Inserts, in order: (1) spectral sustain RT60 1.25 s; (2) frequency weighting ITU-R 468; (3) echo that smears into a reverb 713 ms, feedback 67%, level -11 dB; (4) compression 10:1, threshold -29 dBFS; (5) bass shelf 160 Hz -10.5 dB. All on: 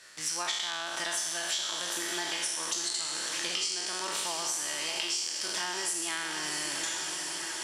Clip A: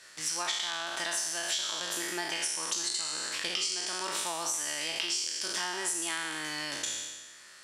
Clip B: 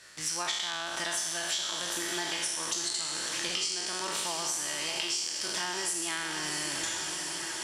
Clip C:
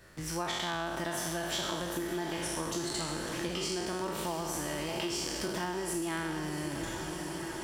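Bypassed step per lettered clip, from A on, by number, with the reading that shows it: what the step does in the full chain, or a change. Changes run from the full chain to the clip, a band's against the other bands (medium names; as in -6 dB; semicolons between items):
3, momentary loudness spread change +2 LU; 5, 125 Hz band +5.0 dB; 2, 125 Hz band +17.5 dB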